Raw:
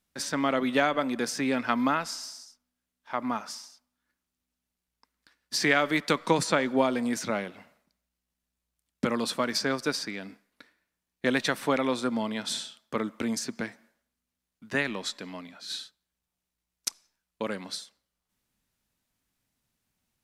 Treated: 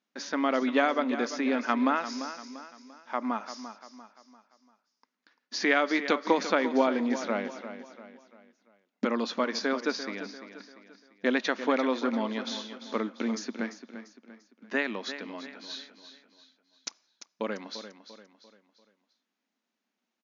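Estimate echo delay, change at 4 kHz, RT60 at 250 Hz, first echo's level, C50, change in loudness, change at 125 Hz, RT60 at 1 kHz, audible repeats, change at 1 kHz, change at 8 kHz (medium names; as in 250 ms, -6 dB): 344 ms, -4.0 dB, no reverb, -11.5 dB, no reverb, -0.5 dB, under -10 dB, no reverb, 4, 0.0 dB, -8.0 dB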